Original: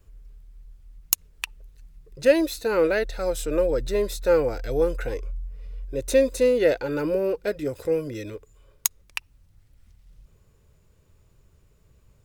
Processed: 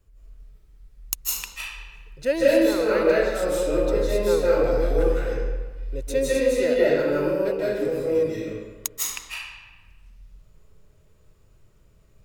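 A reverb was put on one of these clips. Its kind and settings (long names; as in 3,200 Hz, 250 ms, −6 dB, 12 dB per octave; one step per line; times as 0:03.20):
comb and all-pass reverb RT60 1.3 s, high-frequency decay 0.75×, pre-delay 120 ms, DRR −7.5 dB
level −6 dB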